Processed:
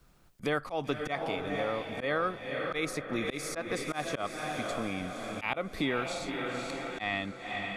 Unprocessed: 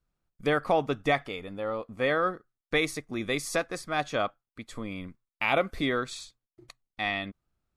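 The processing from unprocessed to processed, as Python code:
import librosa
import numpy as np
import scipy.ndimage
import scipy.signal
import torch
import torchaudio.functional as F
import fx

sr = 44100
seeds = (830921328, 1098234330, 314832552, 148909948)

y = fx.echo_diffused(x, sr, ms=515, feedback_pct=48, wet_db=-9.5)
y = fx.auto_swell(y, sr, attack_ms=157.0)
y = fx.band_squash(y, sr, depth_pct=70)
y = F.gain(torch.from_numpy(y), -1.0).numpy()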